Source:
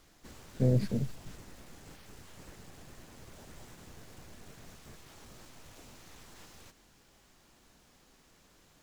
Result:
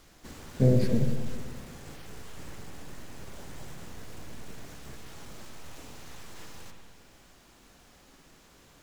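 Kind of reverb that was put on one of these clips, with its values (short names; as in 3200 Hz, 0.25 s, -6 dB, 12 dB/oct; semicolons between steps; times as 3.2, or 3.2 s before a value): spring tank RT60 1.8 s, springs 53/60 ms, chirp 60 ms, DRR 4 dB; gain +5 dB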